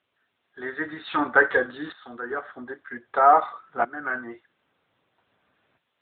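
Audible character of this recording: tremolo saw up 0.52 Hz, depth 85%; a quantiser's noise floor 12-bit, dither triangular; AMR-NB

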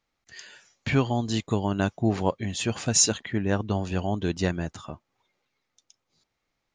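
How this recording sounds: noise floor -80 dBFS; spectral tilt -4.0 dB/oct

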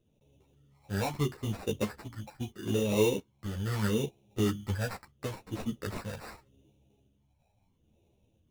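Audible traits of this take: phasing stages 12, 0.77 Hz, lowest notch 360–1800 Hz; aliases and images of a low sample rate 3200 Hz, jitter 0%; a shimmering, thickened sound

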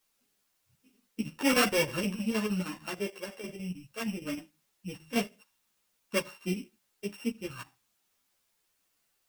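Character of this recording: a buzz of ramps at a fixed pitch in blocks of 16 samples; chopped level 6.4 Hz, depth 60%, duty 75%; a quantiser's noise floor 12-bit, dither triangular; a shimmering, thickened sound

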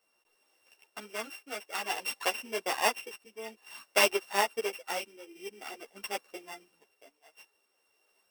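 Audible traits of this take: a buzz of ramps at a fixed pitch in blocks of 16 samples; tremolo triangle 0.52 Hz, depth 70%; a shimmering, thickened sound

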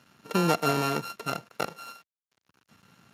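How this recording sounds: a buzz of ramps at a fixed pitch in blocks of 32 samples; random-step tremolo 2.6 Hz, depth 70%; a quantiser's noise floor 10-bit, dither none; Speex

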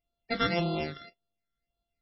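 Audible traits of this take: a buzz of ramps at a fixed pitch in blocks of 64 samples; phasing stages 12, 1.8 Hz, lowest notch 790–2000 Hz; MP3

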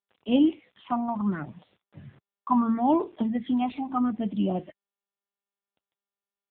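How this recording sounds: phasing stages 8, 0.73 Hz, lowest notch 440–1700 Hz; a quantiser's noise floor 10-bit, dither none; AMR-NB

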